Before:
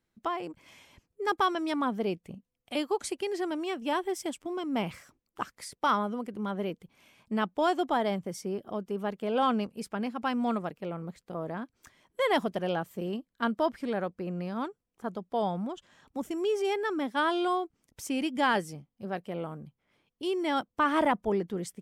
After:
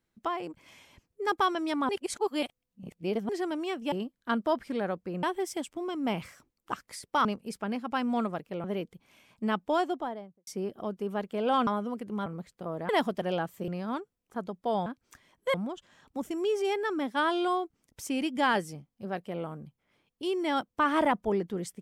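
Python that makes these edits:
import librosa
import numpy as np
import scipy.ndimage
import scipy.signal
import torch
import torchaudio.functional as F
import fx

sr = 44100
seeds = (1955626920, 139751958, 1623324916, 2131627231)

y = fx.studio_fade_out(x, sr, start_s=7.52, length_s=0.84)
y = fx.edit(y, sr, fx.reverse_span(start_s=1.89, length_s=1.4),
    fx.swap(start_s=5.94, length_s=0.59, other_s=9.56, other_length_s=1.39),
    fx.move(start_s=11.58, length_s=0.68, to_s=15.54),
    fx.move(start_s=13.05, length_s=1.31, to_s=3.92), tone=tone)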